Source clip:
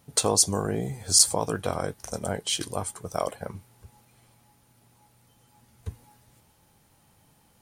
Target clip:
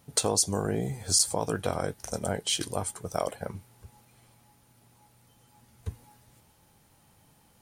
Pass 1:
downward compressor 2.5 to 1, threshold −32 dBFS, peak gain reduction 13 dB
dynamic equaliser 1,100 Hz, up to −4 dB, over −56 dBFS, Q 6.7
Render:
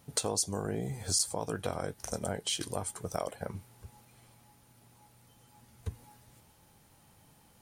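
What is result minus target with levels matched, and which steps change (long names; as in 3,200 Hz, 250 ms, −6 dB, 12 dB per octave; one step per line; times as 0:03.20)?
downward compressor: peak gain reduction +6 dB
change: downward compressor 2.5 to 1, threshold −22 dBFS, peak gain reduction 7 dB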